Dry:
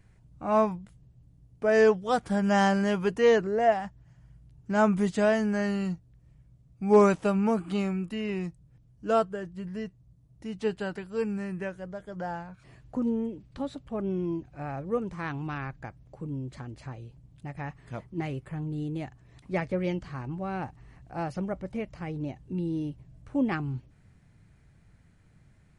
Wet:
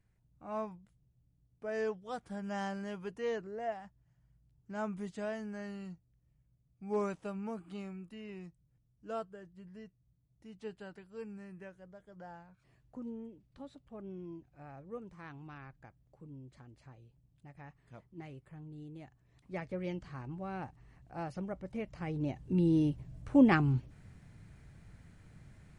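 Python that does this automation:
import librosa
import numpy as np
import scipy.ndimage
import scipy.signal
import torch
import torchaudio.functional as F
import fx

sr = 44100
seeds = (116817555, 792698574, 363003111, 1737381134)

y = fx.gain(x, sr, db=fx.line((18.98, -15.0), (20.06, -7.5), (21.6, -7.5), (22.68, 3.5)))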